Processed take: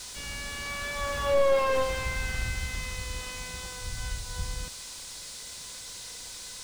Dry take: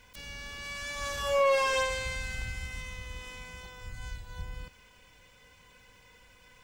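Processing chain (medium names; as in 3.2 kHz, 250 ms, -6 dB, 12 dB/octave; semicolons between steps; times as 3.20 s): band noise 3.6–9.8 kHz -45 dBFS; slew-rate limiter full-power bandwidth 34 Hz; trim +5.5 dB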